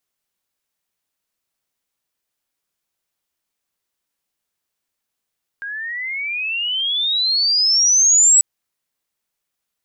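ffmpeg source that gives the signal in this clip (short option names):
-f lavfi -i "aevalsrc='pow(10,(-25.5+17.5*t/2.79)/20)*sin(2*PI*1600*2.79/log(7900/1600)*(exp(log(7900/1600)*t/2.79)-1))':d=2.79:s=44100"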